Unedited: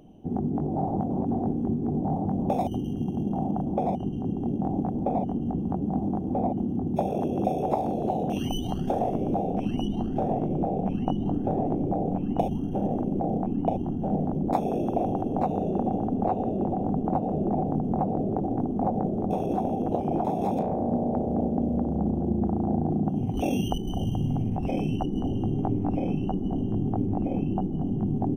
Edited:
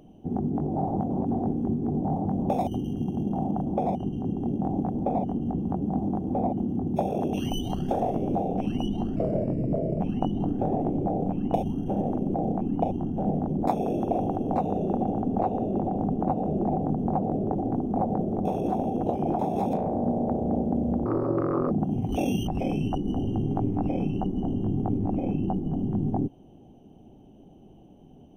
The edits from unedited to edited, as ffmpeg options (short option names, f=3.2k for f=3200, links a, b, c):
-filter_complex "[0:a]asplit=7[a][b][c][d][e][f][g];[a]atrim=end=7.332[h];[b]atrim=start=8.318:end=10.154[i];[c]atrim=start=10.15:end=10.86,asetpts=PTS-STARTPTS,asetrate=37044,aresample=44100[j];[d]atrim=start=10.856:end=21.914[k];[e]atrim=start=21.91:end=22.96,asetpts=PTS-STARTPTS,asetrate=70560,aresample=44100[l];[f]atrim=start=22.956:end=23.722[m];[g]atrim=start=24.548[n];[h][i]acrossfade=d=0.004:c1=hsin:c2=hsin[o];[o][j]acrossfade=d=0.004:c1=hsin:c2=hsin[p];[p][k]acrossfade=d=0.004:c1=hsin:c2=hsin[q];[q][l]acrossfade=d=0.004:c1=hsin:c2=hsin[r];[r][m]acrossfade=d=0.004:c1=hsin:c2=hsin[s];[s][n]acrossfade=d=0.004:c1=hsin:c2=hsin"